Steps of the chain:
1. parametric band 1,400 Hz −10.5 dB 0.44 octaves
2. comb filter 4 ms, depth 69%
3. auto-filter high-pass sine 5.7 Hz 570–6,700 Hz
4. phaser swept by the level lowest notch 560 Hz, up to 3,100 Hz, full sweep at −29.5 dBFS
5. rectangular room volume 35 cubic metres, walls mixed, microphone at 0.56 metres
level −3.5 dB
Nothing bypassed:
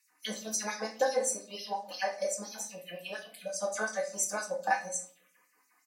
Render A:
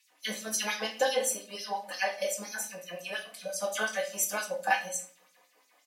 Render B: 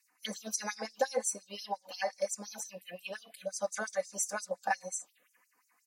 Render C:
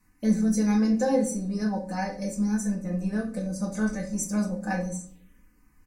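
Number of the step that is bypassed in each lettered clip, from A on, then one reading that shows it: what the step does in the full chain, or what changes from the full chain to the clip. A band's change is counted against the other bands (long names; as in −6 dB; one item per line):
4, 4 kHz band +5.0 dB
5, change in integrated loudness −2.5 LU
3, 125 Hz band +25.0 dB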